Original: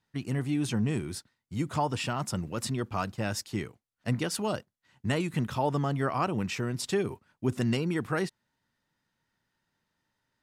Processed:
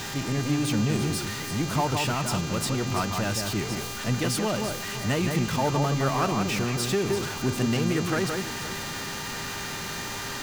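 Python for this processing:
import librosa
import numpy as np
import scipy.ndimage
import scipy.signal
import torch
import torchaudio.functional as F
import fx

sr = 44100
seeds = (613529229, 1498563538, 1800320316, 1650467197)

y = x + 0.5 * 10.0 ** (-30.0 / 20.0) * np.sign(x)
y = fx.dmg_buzz(y, sr, base_hz=400.0, harmonics=19, level_db=-39.0, tilt_db=-1, odd_only=False)
y = fx.echo_alternate(y, sr, ms=169, hz=2500.0, feedback_pct=54, wet_db=-4.5)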